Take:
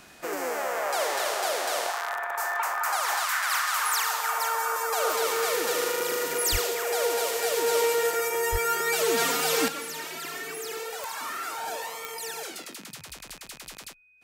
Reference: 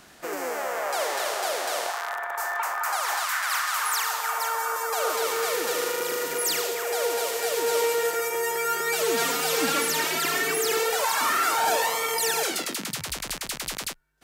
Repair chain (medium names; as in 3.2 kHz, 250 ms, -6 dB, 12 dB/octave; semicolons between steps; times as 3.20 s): de-click; band-stop 2.5 kHz, Q 30; 6.51–6.63 s: high-pass 140 Hz 24 dB/octave; 8.51–8.63 s: high-pass 140 Hz 24 dB/octave; 9.68 s: gain correction +10.5 dB